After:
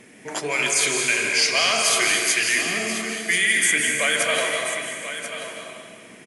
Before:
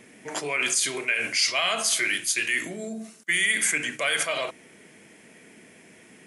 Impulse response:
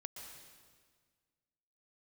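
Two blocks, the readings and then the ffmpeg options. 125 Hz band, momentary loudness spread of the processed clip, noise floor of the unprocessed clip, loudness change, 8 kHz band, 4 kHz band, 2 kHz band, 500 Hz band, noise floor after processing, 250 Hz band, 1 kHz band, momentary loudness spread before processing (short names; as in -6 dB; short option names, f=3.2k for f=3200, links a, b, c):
+5.5 dB, 13 LU, -53 dBFS, +4.5 dB, +5.0 dB, +5.0 dB, +5.0 dB, +6.0 dB, -46 dBFS, +4.5 dB, +5.5 dB, 13 LU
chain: -filter_complex "[0:a]aecho=1:1:1036:0.299[a];[1:a]atrim=start_sample=2205,asetrate=34398,aresample=44100[b];[a][b]afir=irnorm=-1:irlink=0,volume=7dB"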